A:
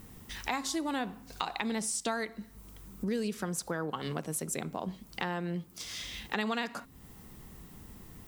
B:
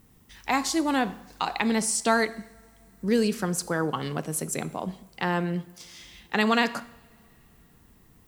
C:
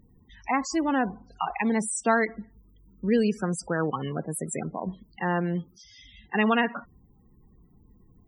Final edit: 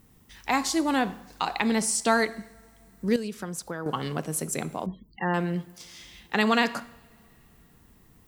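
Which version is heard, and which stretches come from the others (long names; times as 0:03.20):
B
0:03.16–0:03.86: punch in from A
0:04.86–0:05.34: punch in from C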